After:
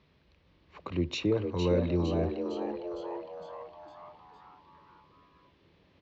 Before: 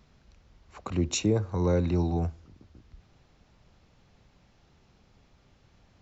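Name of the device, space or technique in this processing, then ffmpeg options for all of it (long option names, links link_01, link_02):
frequency-shifting delay pedal into a guitar cabinet: -filter_complex "[0:a]asplit=8[link_01][link_02][link_03][link_04][link_05][link_06][link_07][link_08];[link_02]adelay=458,afreqshift=130,volume=-6.5dB[link_09];[link_03]adelay=916,afreqshift=260,volume=-11.4dB[link_10];[link_04]adelay=1374,afreqshift=390,volume=-16.3dB[link_11];[link_05]adelay=1832,afreqshift=520,volume=-21.1dB[link_12];[link_06]adelay=2290,afreqshift=650,volume=-26dB[link_13];[link_07]adelay=2748,afreqshift=780,volume=-30.9dB[link_14];[link_08]adelay=3206,afreqshift=910,volume=-35.8dB[link_15];[link_01][link_09][link_10][link_11][link_12][link_13][link_14][link_15]amix=inputs=8:normalize=0,highpass=92,equalizer=frequency=120:width_type=q:width=4:gain=-8,equalizer=frequency=220:width_type=q:width=4:gain=-8,equalizer=frequency=750:width_type=q:width=4:gain=-8,equalizer=frequency=1400:width_type=q:width=4:gain=-7,lowpass=frequency=4100:width=0.5412,lowpass=frequency=4100:width=1.3066"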